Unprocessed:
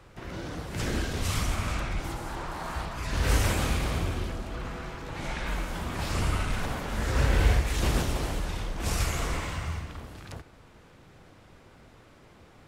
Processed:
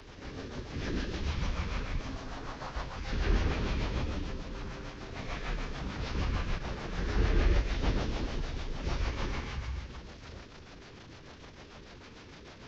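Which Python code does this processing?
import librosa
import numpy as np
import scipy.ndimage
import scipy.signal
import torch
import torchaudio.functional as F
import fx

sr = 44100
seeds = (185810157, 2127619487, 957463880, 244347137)

y = fx.delta_mod(x, sr, bps=32000, step_db=-38.5)
y = fx.rotary(y, sr, hz=6.7)
y = fx.pitch_keep_formants(y, sr, semitones=-4.0)
y = y * 10.0 ** (-2.0 / 20.0)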